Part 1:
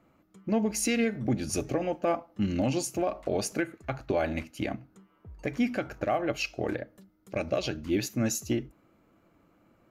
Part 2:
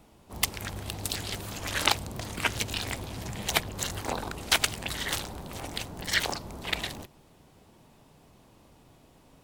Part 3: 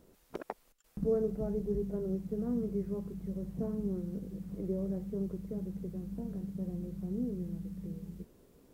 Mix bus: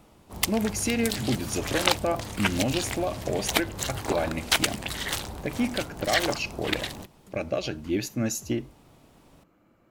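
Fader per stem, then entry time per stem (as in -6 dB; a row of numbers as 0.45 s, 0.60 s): +0.5 dB, +1.0 dB, mute; 0.00 s, 0.00 s, mute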